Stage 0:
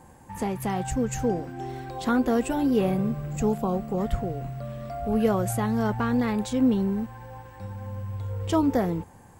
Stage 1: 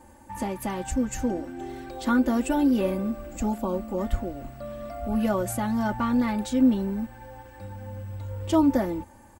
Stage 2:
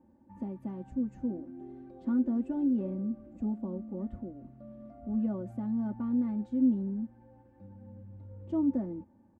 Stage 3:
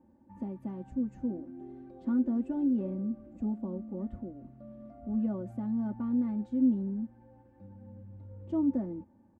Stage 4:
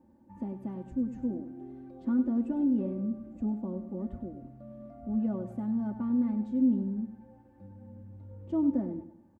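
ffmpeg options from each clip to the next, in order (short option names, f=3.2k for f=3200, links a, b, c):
-af "aecho=1:1:3.4:1,volume=-3dB"
-af "bandpass=f=210:t=q:w=1.4:csg=0,volume=-4.5dB"
-af anull
-af "aecho=1:1:99|198|297|396:0.251|0.0929|0.0344|0.0127,volume=1dB"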